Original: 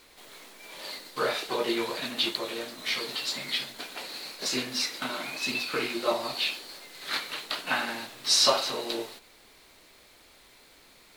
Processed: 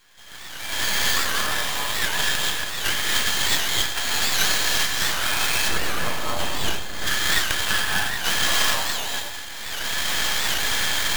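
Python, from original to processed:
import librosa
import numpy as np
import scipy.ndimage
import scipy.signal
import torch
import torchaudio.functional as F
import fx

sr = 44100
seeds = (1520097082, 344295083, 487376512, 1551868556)

y = fx.tracing_dist(x, sr, depth_ms=0.42)
y = fx.recorder_agc(y, sr, target_db=-13.5, rise_db_per_s=25.0, max_gain_db=30)
y = fx.rev_gated(y, sr, seeds[0], gate_ms=300, shape='rising', drr_db=-3.5)
y = np.repeat(y[::4], 4)[:len(y)]
y = scipy.signal.sosfilt(scipy.signal.butter(4, 740.0, 'highpass', fs=sr, output='sos'), y)
y = fx.high_shelf(y, sr, hz=6600.0, db=4.0)
y = fx.small_body(y, sr, hz=(1700.0, 3200.0), ring_ms=25, db=14)
y = np.maximum(y, 0.0)
y = fx.tilt_shelf(y, sr, db=5.5, hz=1100.0, at=(5.68, 7.07))
y = y + 10.0 ** (-11.5 / 20.0) * np.pad(y, (int(95 * sr / 1000.0), 0))[:len(y)]
y = fx.record_warp(y, sr, rpm=78.0, depth_cents=160.0)
y = y * librosa.db_to_amplitude(-1.0)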